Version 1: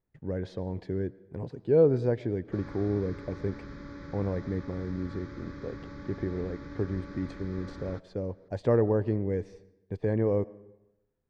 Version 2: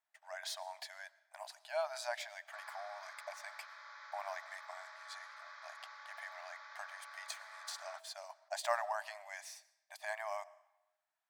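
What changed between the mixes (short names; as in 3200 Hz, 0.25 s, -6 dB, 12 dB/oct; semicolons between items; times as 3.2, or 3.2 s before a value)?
speech: remove tape spacing loss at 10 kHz 27 dB; master: add brick-wall FIR high-pass 600 Hz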